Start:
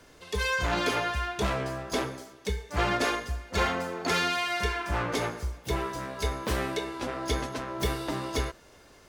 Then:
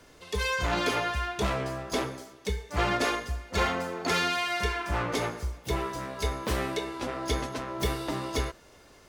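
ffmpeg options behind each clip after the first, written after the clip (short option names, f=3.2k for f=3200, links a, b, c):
-af "bandreject=f=1.6k:w=26"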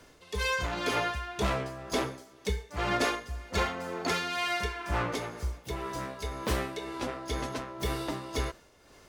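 -af "tremolo=f=2:d=0.55"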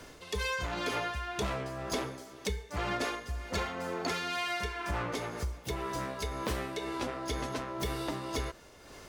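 -af "acompressor=threshold=-40dB:ratio=3,volume=6dB"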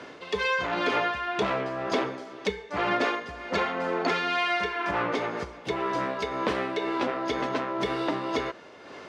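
-af "highpass=210,lowpass=3.2k,volume=8.5dB"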